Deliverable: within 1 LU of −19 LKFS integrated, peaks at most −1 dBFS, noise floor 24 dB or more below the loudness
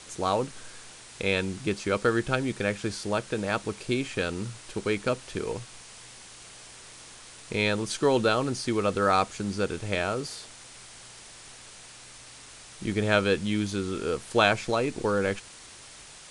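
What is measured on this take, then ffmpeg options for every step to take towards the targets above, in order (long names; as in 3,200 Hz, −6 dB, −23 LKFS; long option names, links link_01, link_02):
background noise floor −48 dBFS; target noise floor −52 dBFS; integrated loudness −28.0 LKFS; sample peak −7.5 dBFS; target loudness −19.0 LKFS
→ -af "afftdn=noise_reduction=6:noise_floor=-48"
-af "volume=9dB,alimiter=limit=-1dB:level=0:latency=1"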